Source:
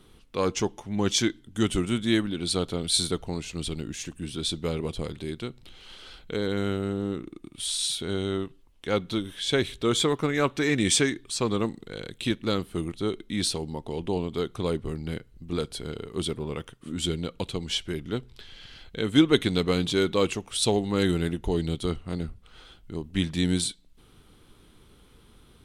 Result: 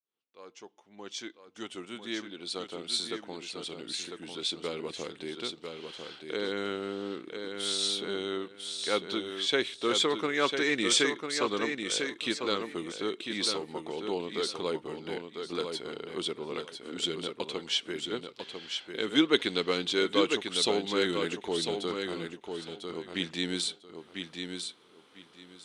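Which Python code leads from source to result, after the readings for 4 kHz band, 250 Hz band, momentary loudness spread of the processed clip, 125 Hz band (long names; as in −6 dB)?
−0.5 dB, −7.5 dB, 13 LU, −16.5 dB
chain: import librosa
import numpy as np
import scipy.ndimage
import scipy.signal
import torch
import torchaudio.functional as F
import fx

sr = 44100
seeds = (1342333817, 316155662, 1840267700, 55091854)

p1 = fx.fade_in_head(x, sr, length_s=5.36)
p2 = fx.dynamic_eq(p1, sr, hz=690.0, q=1.4, threshold_db=-38.0, ratio=4.0, max_db=-4)
p3 = fx.bandpass_edges(p2, sr, low_hz=390.0, high_hz=6400.0)
y = p3 + fx.echo_feedback(p3, sr, ms=998, feedback_pct=20, wet_db=-6, dry=0)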